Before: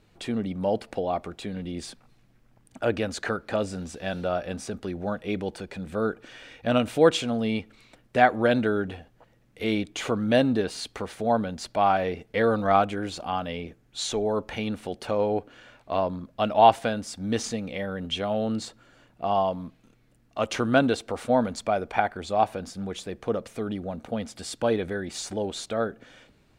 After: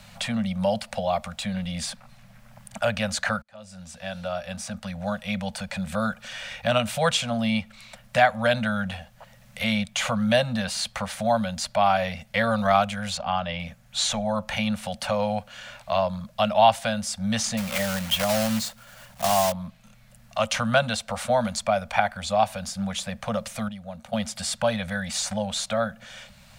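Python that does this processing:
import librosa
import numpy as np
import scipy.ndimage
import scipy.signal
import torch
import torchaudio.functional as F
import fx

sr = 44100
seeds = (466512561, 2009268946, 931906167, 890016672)

y = fx.air_absorb(x, sr, metres=120.0, at=(13.17, 13.6))
y = fx.block_float(y, sr, bits=3, at=(17.57, 19.54))
y = fx.edit(y, sr, fx.fade_in_span(start_s=3.42, length_s=2.44),
    fx.clip_gain(start_s=23.68, length_s=0.45, db=-11.5), tone=tone)
y = scipy.signal.sosfilt(scipy.signal.ellip(3, 1.0, 40, [220.0, 550.0], 'bandstop', fs=sr, output='sos'), y)
y = fx.high_shelf(y, sr, hz=3600.0, db=6.5)
y = fx.band_squash(y, sr, depth_pct=40)
y = y * 10.0 ** (3.5 / 20.0)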